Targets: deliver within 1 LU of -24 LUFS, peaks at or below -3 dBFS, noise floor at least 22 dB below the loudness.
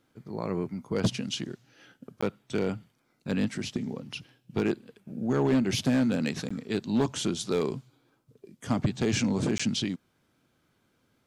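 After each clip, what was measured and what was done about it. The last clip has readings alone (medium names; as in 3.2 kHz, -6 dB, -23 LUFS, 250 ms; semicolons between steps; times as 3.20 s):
clipped samples 0.6%; clipping level -18.5 dBFS; dropouts 3; longest dropout 15 ms; loudness -29.5 LUFS; peak level -18.5 dBFS; loudness target -24.0 LUFS
-> clip repair -18.5 dBFS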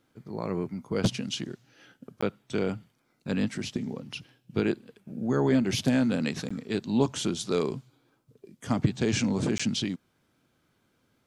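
clipped samples 0.0%; dropouts 3; longest dropout 15 ms
-> interpolate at 2.21/6.49/9.58 s, 15 ms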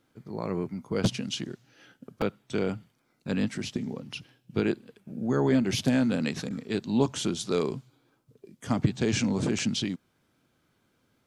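dropouts 0; loudness -29.0 LUFS; peak level -9.5 dBFS; loudness target -24.0 LUFS
-> trim +5 dB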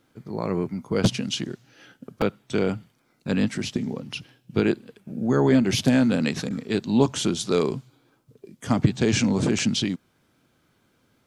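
loudness -24.0 LUFS; peak level -4.5 dBFS; noise floor -66 dBFS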